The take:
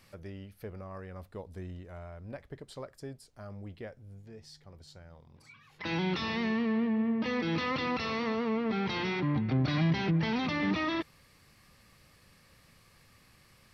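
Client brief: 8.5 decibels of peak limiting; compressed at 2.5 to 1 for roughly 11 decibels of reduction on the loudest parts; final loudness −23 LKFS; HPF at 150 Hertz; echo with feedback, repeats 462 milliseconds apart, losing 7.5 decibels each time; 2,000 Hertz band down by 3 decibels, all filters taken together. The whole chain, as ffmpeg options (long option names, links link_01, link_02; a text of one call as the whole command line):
ffmpeg -i in.wav -af "highpass=150,equalizer=frequency=2000:width_type=o:gain=-3.5,acompressor=threshold=-43dB:ratio=2.5,alimiter=level_in=15dB:limit=-24dB:level=0:latency=1,volume=-15dB,aecho=1:1:462|924|1386|1848|2310:0.422|0.177|0.0744|0.0312|0.0131,volume=24dB" out.wav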